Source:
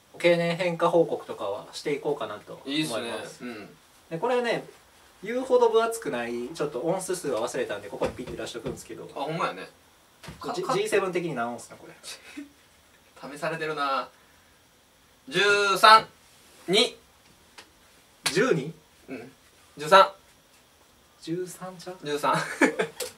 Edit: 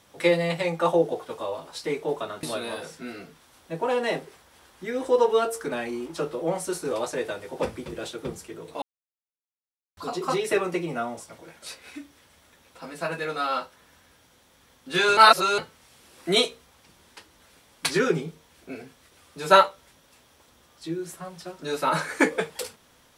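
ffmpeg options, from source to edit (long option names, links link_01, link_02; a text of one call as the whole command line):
ffmpeg -i in.wav -filter_complex "[0:a]asplit=6[link_01][link_02][link_03][link_04][link_05][link_06];[link_01]atrim=end=2.432[link_07];[link_02]atrim=start=2.838:end=9.23,asetpts=PTS-STARTPTS,afade=type=out:start_time=6.388:duration=0.004:curve=hsin[link_08];[link_03]atrim=start=9.23:end=10.38,asetpts=PTS-STARTPTS,volume=0[link_09];[link_04]atrim=start=10.38:end=15.582,asetpts=PTS-STARTPTS,afade=type=in:duration=0.004:curve=hsin[link_10];[link_05]atrim=start=15.578:end=15.992,asetpts=PTS-STARTPTS,areverse[link_11];[link_06]atrim=start=15.988[link_12];[link_08][link_09][link_10]concat=n=3:v=0:a=1[link_13];[link_07][link_13]acrossfade=duration=0.004:curve1=hsin:curve2=hsin[link_14];[link_14][link_11]acrossfade=duration=0.004:curve1=hsin:curve2=hsin[link_15];[link_15][link_12]acrossfade=duration=0.004:curve1=hsin:curve2=hsin" out.wav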